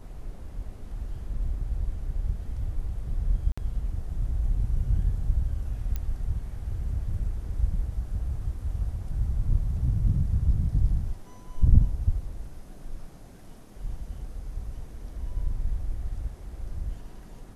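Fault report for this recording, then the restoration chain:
0:03.52–0:03.58: drop-out 55 ms
0:05.96: click −18 dBFS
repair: click removal
repair the gap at 0:03.52, 55 ms

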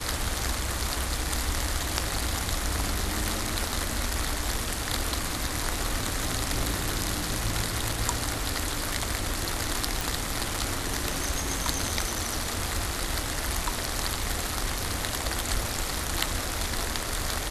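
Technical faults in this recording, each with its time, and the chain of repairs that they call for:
0:10.01: click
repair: click removal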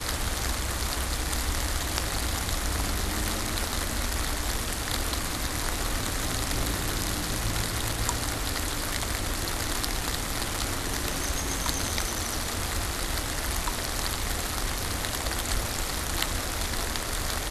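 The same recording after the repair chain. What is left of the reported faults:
none of them is left

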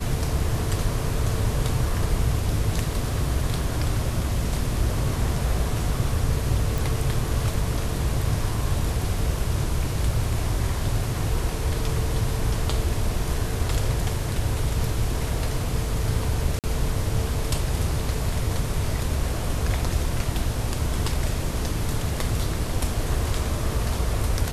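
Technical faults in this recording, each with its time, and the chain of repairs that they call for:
0:06.78: click
0:16.59–0:16.64: drop-out 48 ms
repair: click removal
repair the gap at 0:16.59, 48 ms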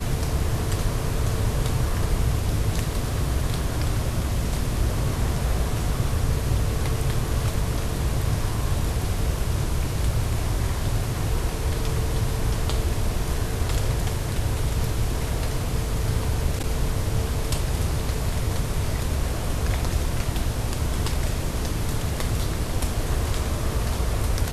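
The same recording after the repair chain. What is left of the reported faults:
none of them is left

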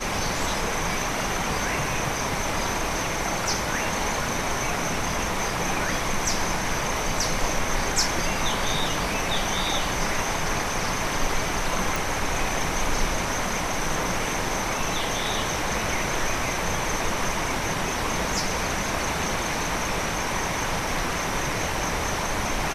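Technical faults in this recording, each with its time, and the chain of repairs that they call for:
0:11.96: click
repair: click removal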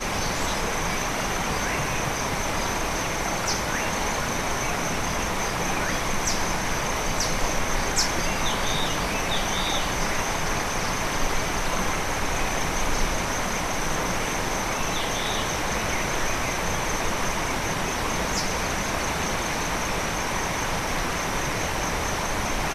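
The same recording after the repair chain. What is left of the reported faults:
none of them is left

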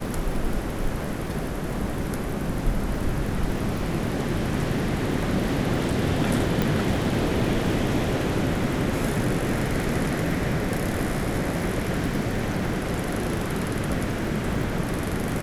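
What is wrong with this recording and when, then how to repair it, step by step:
surface crackle 50 per second −32 dBFS
0:06.62: click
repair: click removal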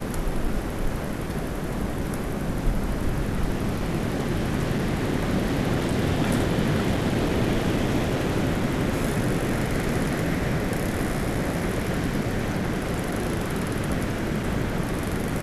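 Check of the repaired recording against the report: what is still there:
none of them is left

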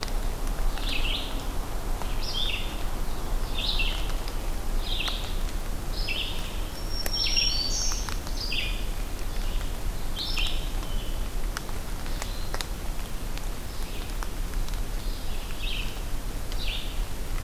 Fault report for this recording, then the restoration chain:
surface crackle 29 per second −34 dBFS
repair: click removal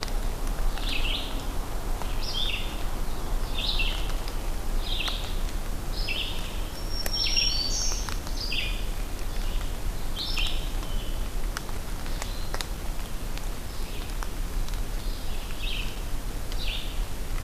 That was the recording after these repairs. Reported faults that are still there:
none of them is left

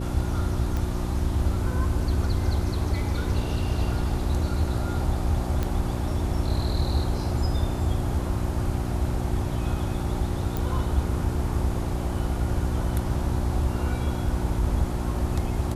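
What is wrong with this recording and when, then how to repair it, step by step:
mains hum 60 Hz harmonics 6 −30 dBFS
0:00.77: click
0:05.63: click −14 dBFS
0:10.57: click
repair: click removal
hum removal 60 Hz, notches 6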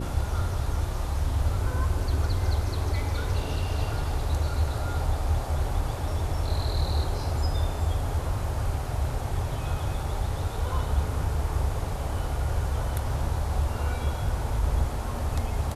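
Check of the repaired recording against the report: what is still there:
0:05.63: click

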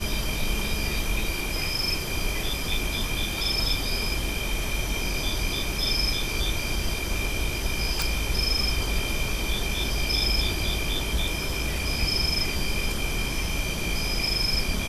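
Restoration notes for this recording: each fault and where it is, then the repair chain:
0:08.02: click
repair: click removal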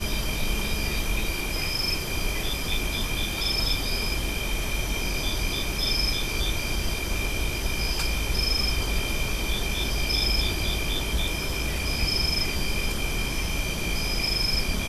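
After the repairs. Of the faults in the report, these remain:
none of them is left

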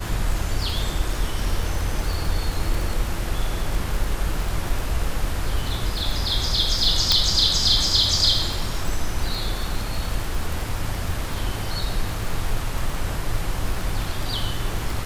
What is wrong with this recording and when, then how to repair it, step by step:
surface crackle 39 per second −25 dBFS
0:07.12: click −2 dBFS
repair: click removal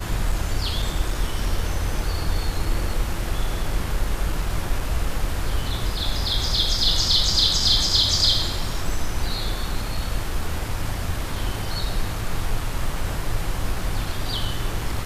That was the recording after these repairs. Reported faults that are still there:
none of them is left

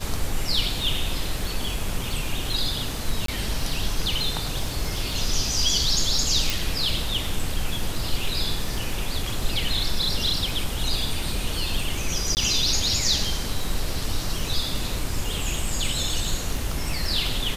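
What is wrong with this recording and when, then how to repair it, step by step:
surface crackle 26 per second −29 dBFS
0:03.26–0:03.28: drop-out 23 ms
0:06.50: click
0:12.35–0:12.37: drop-out 19 ms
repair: click removal
repair the gap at 0:03.26, 23 ms
repair the gap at 0:12.35, 19 ms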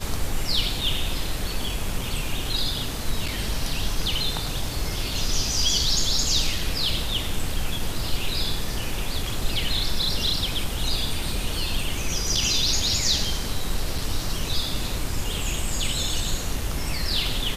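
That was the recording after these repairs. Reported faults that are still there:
none of them is left

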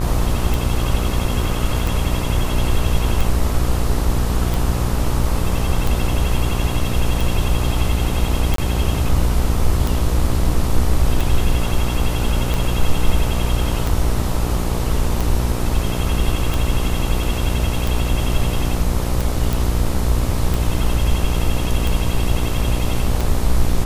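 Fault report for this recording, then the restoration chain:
mains buzz 60 Hz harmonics 22 −22 dBFS
scratch tick 45 rpm
0:08.56–0:08.58: drop-out 23 ms
0:19.53: click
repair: click removal
hum removal 60 Hz, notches 22
repair the gap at 0:08.56, 23 ms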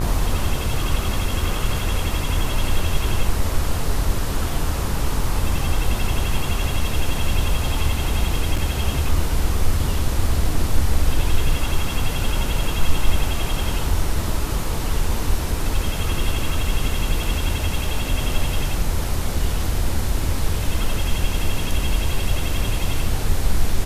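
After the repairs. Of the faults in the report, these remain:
none of them is left

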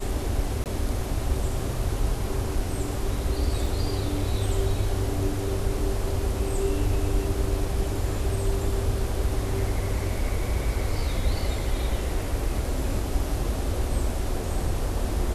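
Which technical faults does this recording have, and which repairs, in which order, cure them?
0:00.64–0:00.66: drop-out 18 ms
0:03.66: drop-out 2.2 ms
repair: repair the gap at 0:00.64, 18 ms
repair the gap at 0:03.66, 2.2 ms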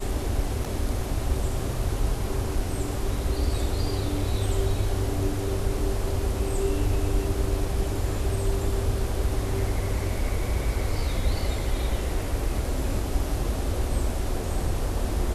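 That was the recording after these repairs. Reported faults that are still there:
none of them is left

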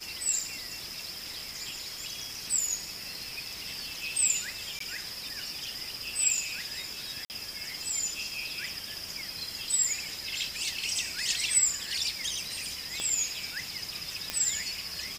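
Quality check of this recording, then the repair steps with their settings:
0:04.79–0:04.80: drop-out 14 ms
0:07.25–0:07.30: drop-out 49 ms
0:13.00: click −19 dBFS
0:14.30: click −13 dBFS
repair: click removal
repair the gap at 0:04.79, 14 ms
repair the gap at 0:07.25, 49 ms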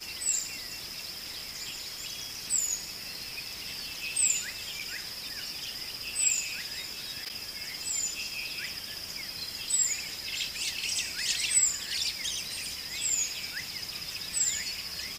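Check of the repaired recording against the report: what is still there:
0:13.00: click

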